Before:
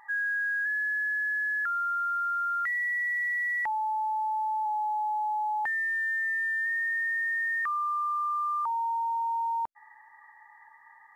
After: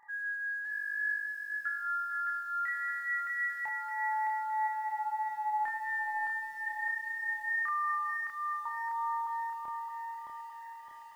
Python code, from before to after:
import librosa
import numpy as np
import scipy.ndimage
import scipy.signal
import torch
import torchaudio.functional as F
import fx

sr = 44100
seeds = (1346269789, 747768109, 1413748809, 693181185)

y = fx.echo_feedback(x, sr, ms=646, feedback_pct=23, wet_db=-19.5)
y = fx.chorus_voices(y, sr, voices=2, hz=0.32, base_ms=29, depth_ms=1.1, mix_pct=45)
y = fx.echo_crushed(y, sr, ms=615, feedback_pct=55, bits=10, wet_db=-4.0)
y = y * 10.0 ** (-4.0 / 20.0)